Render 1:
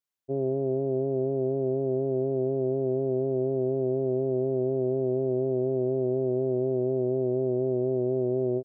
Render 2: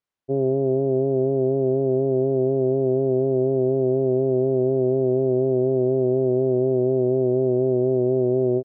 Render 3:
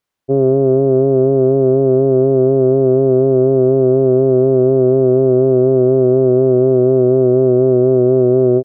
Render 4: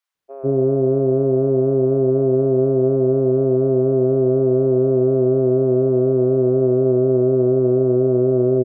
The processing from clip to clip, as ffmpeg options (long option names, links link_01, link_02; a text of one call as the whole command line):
ffmpeg -i in.wav -af "aemphasis=mode=reproduction:type=75kf,volume=6.5dB" out.wav
ffmpeg -i in.wav -af "acontrast=32,volume=4dB" out.wav
ffmpeg -i in.wav -filter_complex "[0:a]acrossover=split=690[link_01][link_02];[link_01]adelay=150[link_03];[link_03][link_02]amix=inputs=2:normalize=0,volume=-4dB" out.wav